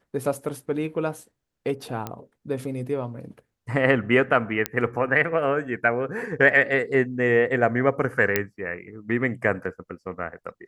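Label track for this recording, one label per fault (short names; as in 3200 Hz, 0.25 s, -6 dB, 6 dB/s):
2.070000	2.070000	pop -16 dBFS
4.660000	4.660000	pop -7 dBFS
8.360000	8.360000	pop -5 dBFS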